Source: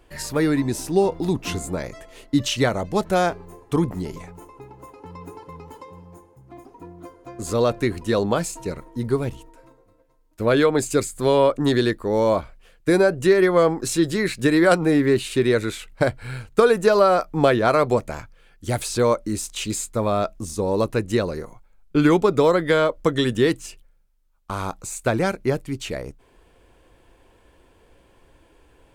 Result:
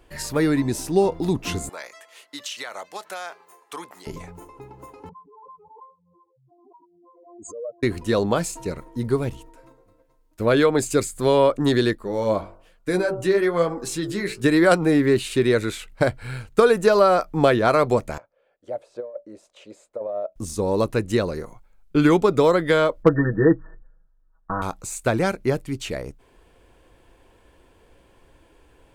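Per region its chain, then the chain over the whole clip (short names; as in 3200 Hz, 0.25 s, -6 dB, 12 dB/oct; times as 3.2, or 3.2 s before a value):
1.69–4.07 HPF 970 Hz + compressor 12:1, threshold -28 dBFS
5.09–7.83 spectral contrast raised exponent 3.8 + HPF 1100 Hz + backwards sustainer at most 49 dB/s
11.95–14.44 de-hum 48.02 Hz, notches 31 + flange 1.1 Hz, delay 3.5 ms, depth 7.2 ms, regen +43%
18.18–20.36 band-pass 570 Hz, Q 6.6 + negative-ratio compressor -28 dBFS, ratio -0.5 + mismatched tape noise reduction encoder only
23.03–24.62 brick-wall FIR low-pass 1900 Hz + comb 6.2 ms, depth 97% + hard clip -5 dBFS
whole clip: dry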